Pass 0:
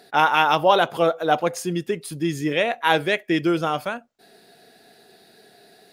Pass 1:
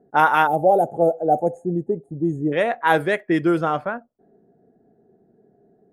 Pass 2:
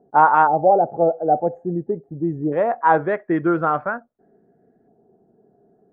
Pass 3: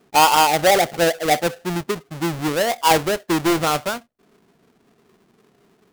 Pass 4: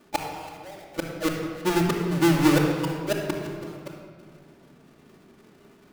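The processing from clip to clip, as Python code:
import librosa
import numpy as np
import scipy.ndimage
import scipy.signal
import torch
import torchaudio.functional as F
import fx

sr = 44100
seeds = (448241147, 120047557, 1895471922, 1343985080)

y1 = fx.spec_box(x, sr, start_s=0.47, length_s=2.05, low_hz=880.0, high_hz=6400.0, gain_db=-28)
y1 = fx.env_lowpass(y1, sr, base_hz=320.0, full_db=-15.5)
y1 = fx.band_shelf(y1, sr, hz=3900.0, db=-10.0, octaves=1.7)
y1 = F.gain(torch.from_numpy(y1), 2.0).numpy()
y2 = fx.filter_lfo_lowpass(y1, sr, shape='saw_up', hz=0.41, low_hz=970.0, high_hz=2000.0, q=1.8)
y2 = F.gain(torch.from_numpy(y2), -1.0).numpy()
y3 = fx.halfwave_hold(y2, sr)
y3 = F.gain(torch.from_numpy(y3), -3.5).numpy()
y4 = fx.gate_flip(y3, sr, shuts_db=-16.0, range_db=-32)
y4 = y4 + 10.0 ** (-19.0 / 20.0) * np.pad(y4, (int(328 * sr / 1000.0), 0))[:len(y4)]
y4 = fx.room_shoebox(y4, sr, seeds[0], volume_m3=3300.0, walls='mixed', distance_m=2.5)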